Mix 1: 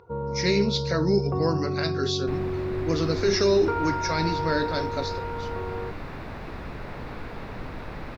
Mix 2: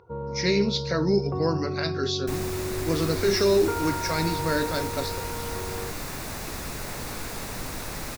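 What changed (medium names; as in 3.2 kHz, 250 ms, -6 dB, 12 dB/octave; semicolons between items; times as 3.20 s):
first sound: send -11.5 dB; second sound: remove distance through air 380 m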